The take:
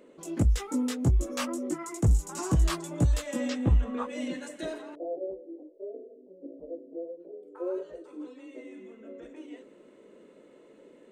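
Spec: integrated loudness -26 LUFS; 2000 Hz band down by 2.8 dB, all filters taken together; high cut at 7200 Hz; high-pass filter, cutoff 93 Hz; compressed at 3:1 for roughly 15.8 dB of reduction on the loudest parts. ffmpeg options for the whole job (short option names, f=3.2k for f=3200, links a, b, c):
-af "highpass=93,lowpass=7.2k,equalizer=f=2k:t=o:g=-3.5,acompressor=threshold=-43dB:ratio=3,volume=19dB"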